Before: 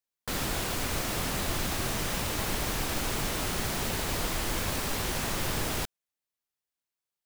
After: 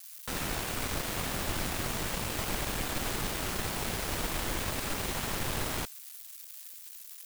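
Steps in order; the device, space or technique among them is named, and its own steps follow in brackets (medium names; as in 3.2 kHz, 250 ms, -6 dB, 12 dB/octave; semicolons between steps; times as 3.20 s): budget class-D amplifier (dead-time distortion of 0.13 ms; zero-crossing glitches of -26.5 dBFS); trim -1.5 dB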